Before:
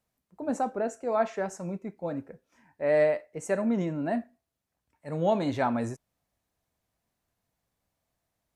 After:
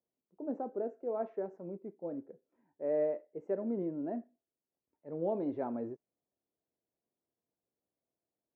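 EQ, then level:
resonant band-pass 380 Hz, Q 2.1
high-frequency loss of the air 160 metres
−1.5 dB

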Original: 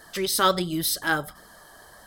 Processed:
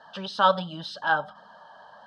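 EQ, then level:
loudspeaker in its box 190–3,900 Hz, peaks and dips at 200 Hz +7 dB, 360 Hz +5 dB, 580 Hz +5 dB, 890 Hz +9 dB, 1,600 Hz +8 dB, 2,900 Hz +8 dB
parametric band 400 Hz +3 dB 0.25 octaves
phaser with its sweep stopped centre 870 Hz, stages 4
−1.0 dB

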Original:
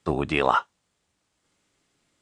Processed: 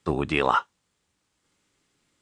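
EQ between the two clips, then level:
parametric band 660 Hz −5 dB 0.37 octaves
0.0 dB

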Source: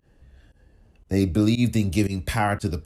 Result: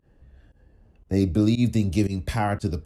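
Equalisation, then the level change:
dynamic equaliser 1,600 Hz, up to −3 dB, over −38 dBFS, Q 0.73
high-shelf EQ 2,400 Hz −9.5 dB
dynamic equaliser 5,500 Hz, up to +6 dB, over −53 dBFS, Q 0.78
0.0 dB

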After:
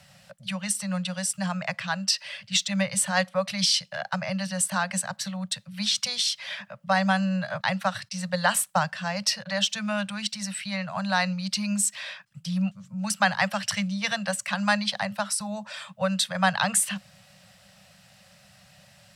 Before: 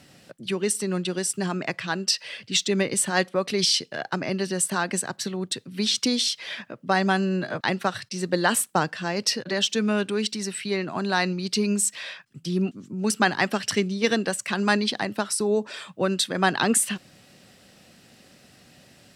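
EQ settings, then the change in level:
Chebyshev band-stop filter 200–550 Hz, order 4
0.0 dB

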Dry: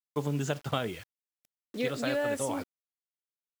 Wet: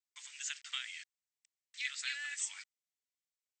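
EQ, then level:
four-pole ladder high-pass 1,700 Hz, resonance 55%
linear-phase brick-wall low-pass 8,400 Hz
first difference
+13.5 dB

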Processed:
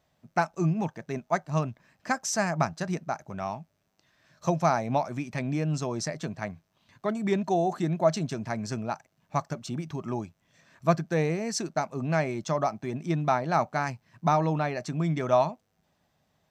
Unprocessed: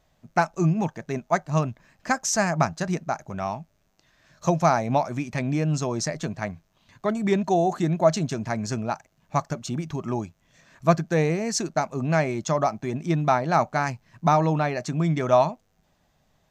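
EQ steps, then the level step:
high-pass filter 75 Hz
notch filter 6,700 Hz, Q 13
−4.0 dB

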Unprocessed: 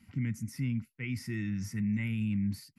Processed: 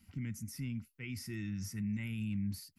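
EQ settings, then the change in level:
octave-band graphic EQ 125/250/500/1,000/2,000/4,000/8,000 Hz −11/−8/−7/−7/−10/−3/−4 dB
+5.0 dB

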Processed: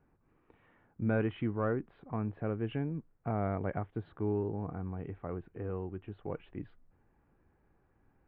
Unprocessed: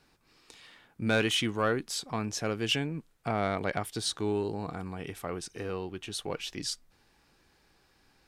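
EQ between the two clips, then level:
Gaussian smoothing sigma 5 samples
parametric band 94 Hz +4 dB 0.39 octaves
low-shelf EQ 350 Hz +5 dB
−5.0 dB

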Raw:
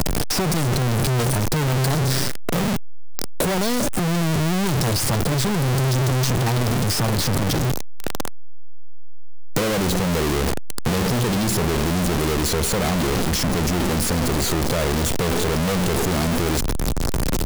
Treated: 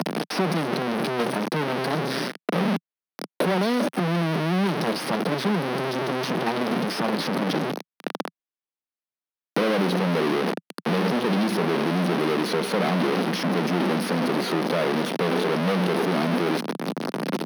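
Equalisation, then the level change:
moving average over 6 samples
Butterworth high-pass 170 Hz 48 dB per octave
0.0 dB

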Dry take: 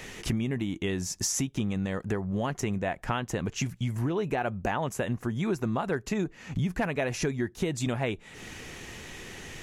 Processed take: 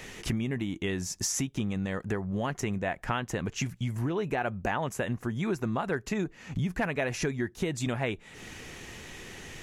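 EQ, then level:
dynamic equaliser 1,800 Hz, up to +3 dB, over −43 dBFS, Q 1.2
−1.5 dB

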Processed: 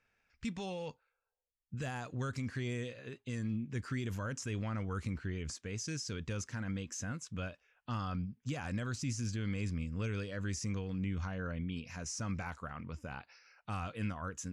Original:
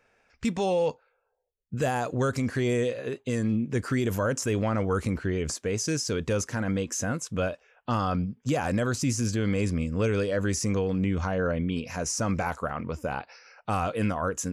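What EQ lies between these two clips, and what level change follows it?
high-frequency loss of the air 60 metres
parametric band 540 Hz −11.5 dB 2.1 octaves
−6.5 dB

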